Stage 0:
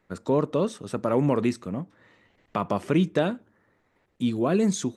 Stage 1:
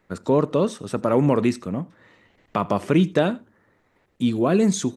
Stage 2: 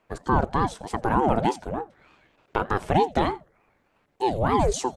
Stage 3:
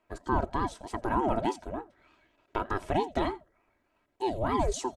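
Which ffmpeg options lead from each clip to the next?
ffmpeg -i in.wav -af "aecho=1:1:84:0.0708,volume=4dB" out.wav
ffmpeg -i in.wav -af "aeval=exprs='val(0)*sin(2*PI*430*n/s+430*0.5/3.3*sin(2*PI*3.3*n/s))':channel_layout=same" out.wav
ffmpeg -i in.wav -af "aecho=1:1:3.1:0.5,volume=-7dB" out.wav

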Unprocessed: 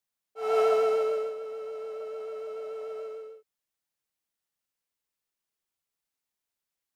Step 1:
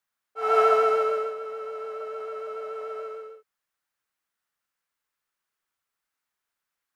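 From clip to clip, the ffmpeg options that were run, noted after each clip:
ffmpeg -i in.wav -af "equalizer=frequency=1400:width=1:gain=11" out.wav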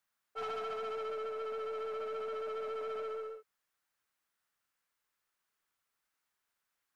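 ffmpeg -i in.wav -af "acompressor=threshold=-32dB:ratio=16,aeval=exprs='(tanh(56.2*val(0)+0.15)-tanh(0.15))/56.2':channel_layout=same" out.wav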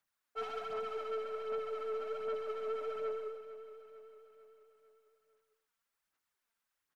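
ffmpeg -i in.wav -af "aphaser=in_gain=1:out_gain=1:delay=4.5:decay=0.49:speed=1.3:type=sinusoidal,aecho=1:1:450|900|1350|1800|2250:0.2|0.108|0.0582|0.0314|0.017,volume=-3.5dB" out.wav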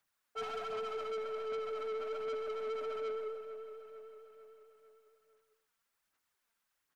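ffmpeg -i in.wav -af "asoftclip=type=tanh:threshold=-38.5dB,volume=3.5dB" out.wav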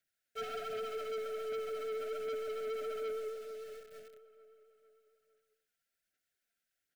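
ffmpeg -i in.wav -filter_complex "[0:a]asplit=2[link_01][link_02];[link_02]acrusher=bits=7:mix=0:aa=0.000001,volume=-4.5dB[link_03];[link_01][link_03]amix=inputs=2:normalize=0,asuperstop=centerf=1000:order=20:qfactor=1.8,volume=-4dB" out.wav

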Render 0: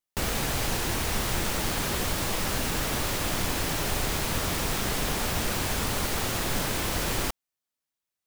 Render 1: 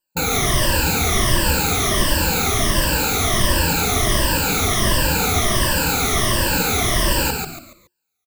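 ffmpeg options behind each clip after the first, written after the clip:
ffmpeg -i in.wav -filter_complex "[0:a]afftfilt=real='re*pow(10,23/40*sin(2*PI*(1.3*log(max(b,1)*sr/1024/100)/log(2)-(-1.4)*(pts-256)/sr)))':imag='im*pow(10,23/40*sin(2*PI*(1.3*log(max(b,1)*sr/1024/100)/log(2)-(-1.4)*(pts-256)/sr)))':win_size=1024:overlap=0.75,asplit=2[link_01][link_02];[link_02]asplit=4[link_03][link_04][link_05][link_06];[link_03]adelay=141,afreqshift=-91,volume=-4dB[link_07];[link_04]adelay=282,afreqshift=-182,volume=-13.4dB[link_08];[link_05]adelay=423,afreqshift=-273,volume=-22.7dB[link_09];[link_06]adelay=564,afreqshift=-364,volume=-32.1dB[link_10];[link_07][link_08][link_09][link_10]amix=inputs=4:normalize=0[link_11];[link_01][link_11]amix=inputs=2:normalize=0,volume=3dB" out.wav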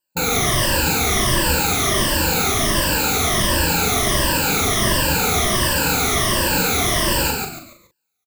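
ffmpeg -i in.wav -filter_complex "[0:a]lowshelf=frequency=63:gain=-7.5,asplit=2[link_01][link_02];[link_02]adelay=40,volume=-6.5dB[link_03];[link_01][link_03]amix=inputs=2:normalize=0" out.wav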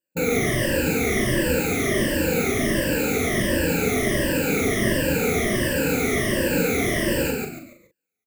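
ffmpeg -i in.wav -af "equalizer=frequency=125:width_type=o:width=1:gain=4,equalizer=frequency=250:width_type=o:width=1:gain=9,equalizer=frequency=500:width_type=o:width=1:gain=12,equalizer=frequency=1000:width_type=o:width=1:gain=-12,equalizer=frequency=2000:width_type=o:width=1:gain=11,equalizer=frequency=4000:width_type=o:width=1:gain=-7,volume=-8.5dB" out.wav

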